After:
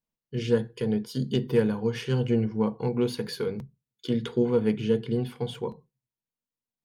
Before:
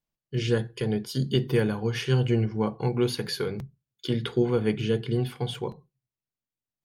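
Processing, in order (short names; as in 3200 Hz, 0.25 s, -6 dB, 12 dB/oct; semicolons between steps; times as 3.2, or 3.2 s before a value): self-modulated delay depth 0.054 ms; small resonant body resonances 230/470/940 Hz, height 8 dB, ringing for 40 ms; gain -4.5 dB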